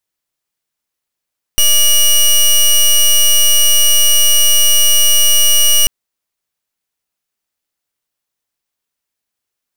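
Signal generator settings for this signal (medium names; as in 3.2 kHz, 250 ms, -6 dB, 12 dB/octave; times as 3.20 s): pulse 2.9 kHz, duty 15% -8.5 dBFS 4.29 s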